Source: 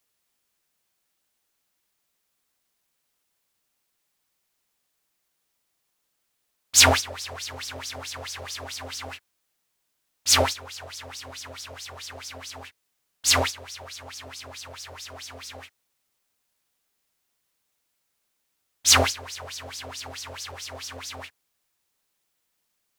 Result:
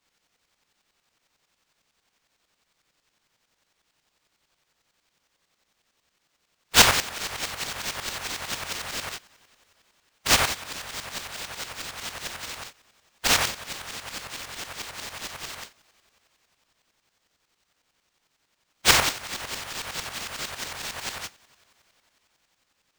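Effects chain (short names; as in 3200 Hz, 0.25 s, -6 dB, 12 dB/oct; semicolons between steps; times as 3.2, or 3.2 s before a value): spectral limiter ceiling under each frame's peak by 27 dB; bell 300 Hz -14 dB 1.1 oct; in parallel at -1 dB: compressor, threshold -32 dBFS, peak gain reduction 19.5 dB; on the sum: sample-rate reducer 12000 Hz, jitter 0%; two-slope reverb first 0.27 s, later 4.1 s, from -18 dB, DRR 15.5 dB; tremolo saw up 11 Hz, depth 70%; gain +2 dB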